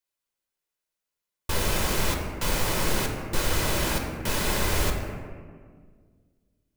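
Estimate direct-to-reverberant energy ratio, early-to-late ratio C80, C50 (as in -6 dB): 2.0 dB, 5.5 dB, 4.0 dB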